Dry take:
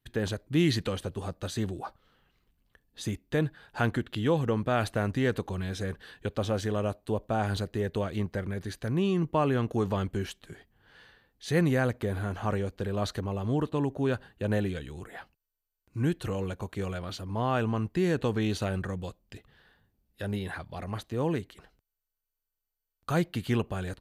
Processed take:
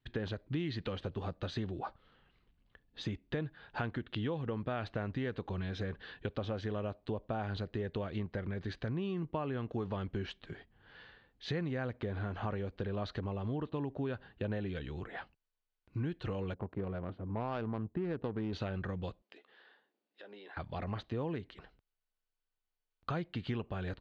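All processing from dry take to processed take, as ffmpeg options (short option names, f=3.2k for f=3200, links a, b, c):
-filter_complex "[0:a]asettb=1/sr,asplit=3[a][b][c];[a]atrim=end=16.544[d];[b]atrim=start=16.54:end=18.53,asetpts=PTS-STARTPTS,afade=t=in:d=0.004:c=qsin,afade=t=out:st=1.986:d=0.004:c=qsin,highpass=f=98:p=1,adynamicsmooth=sensitivity=1.5:basefreq=620[e];[c]atrim=start=18.526[f];[d][e]acrossfade=d=0.004:c1=hsin:c2=qsin[g];[g][f]acrossfade=d=0.004:c1=qsin:c2=hsin,asettb=1/sr,asplit=3[h][i][j];[h]atrim=end=19.224[k];[i]atrim=start=19.22:end=20.57,asetpts=PTS-STARTPTS,afade=t=in:d=0.004:c=qsin,afade=t=out:st=1.346:d=0.004:c=qsin,highpass=f=320:w=0.5412,highpass=f=320:w=1.3066,asplit=2[l][m];[m]adelay=14,volume=-13dB[n];[l][n]amix=inputs=2:normalize=0,atrim=end_sample=59535,acompressor=threshold=-55dB:ratio=2.5:attack=3.2:release=140:knee=1:detection=peak[o];[j]atrim=start=20.566[p];[k][o]acrossfade=d=0.004:c1=hsin:c2=qsin[q];[q][p]acrossfade=d=0.004:c1=qsin:c2=hsin,lowpass=f=4.2k:w=0.5412,lowpass=f=4.2k:w=1.3066,acompressor=threshold=-34dB:ratio=5"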